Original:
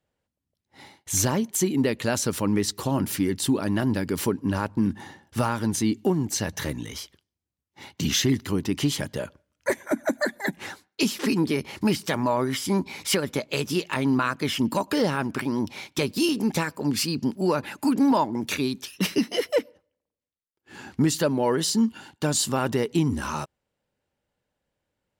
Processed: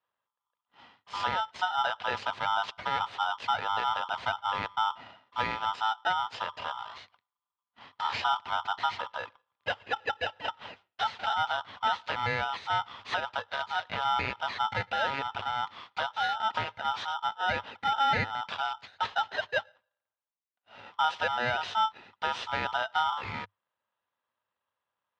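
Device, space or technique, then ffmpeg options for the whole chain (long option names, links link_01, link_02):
ring modulator pedal into a guitar cabinet: -af "aeval=exprs='val(0)*sgn(sin(2*PI*1100*n/s))':channel_layout=same,highpass=80,equalizer=frequency=100:width_type=q:width=4:gain=8,equalizer=frequency=160:width_type=q:width=4:gain=-5,equalizer=frequency=310:width_type=q:width=4:gain=-8,equalizer=frequency=960:width_type=q:width=4:gain=4,lowpass=frequency=3700:width=0.5412,lowpass=frequency=3700:width=1.3066,volume=-6.5dB"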